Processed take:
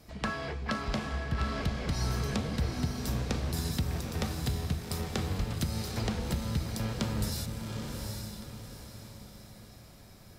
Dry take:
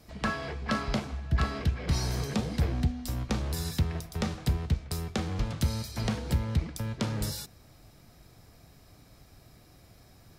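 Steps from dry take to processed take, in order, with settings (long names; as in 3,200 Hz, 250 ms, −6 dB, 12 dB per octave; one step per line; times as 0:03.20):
downward compressor, threshold −28 dBFS, peak gain reduction 7.5 dB
feedback delay with all-pass diffusion 813 ms, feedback 41%, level −4 dB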